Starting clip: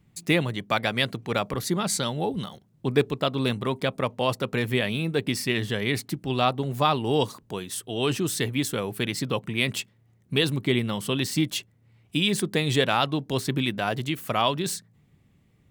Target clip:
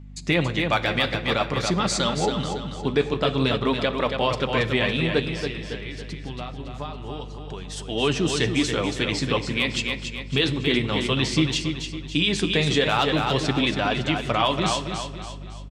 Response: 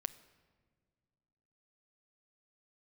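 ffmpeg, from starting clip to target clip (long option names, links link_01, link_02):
-filter_complex "[0:a]lowpass=frequency=6900:width=0.5412,lowpass=frequency=6900:width=1.3066,lowshelf=frequency=370:gain=-4,asettb=1/sr,asplit=3[link_01][link_02][link_03];[link_01]atrim=end=5.274[link_04];[link_02]atrim=start=5.27:end=7.77,asetpts=PTS-STARTPTS,afade=type=in:duration=0.004:curve=qsin,afade=type=out:start_time=2.496:duration=0.004:curve=qsin,acompressor=threshold=-37dB:ratio=12[link_05];[link_03]atrim=start=7.766[link_06];[link_04][link_05]acrossfade=duration=0.004:curve1=hsin:curve2=qsin[link_07];[link_07][link_06]acrossfade=duration=0.004:curve1=qsin:curve2=hsin,asoftclip=type=hard:threshold=-10.5dB,flanger=delay=3.4:depth=8.2:regen=-49:speed=0.51:shape=sinusoidal,aeval=exprs='val(0)+0.00398*(sin(2*PI*50*n/s)+sin(2*PI*2*50*n/s)/2+sin(2*PI*3*50*n/s)/3+sin(2*PI*4*50*n/s)/4+sin(2*PI*5*50*n/s)/5)':channel_layout=same,aecho=1:1:279|558|837|1116|1395:0.447|0.197|0.0865|0.0381|0.0167[link_08];[1:a]atrim=start_sample=2205[link_09];[link_08][link_09]afir=irnorm=-1:irlink=0,alimiter=level_in=18.5dB:limit=-1dB:release=50:level=0:latency=1,volume=-8.5dB"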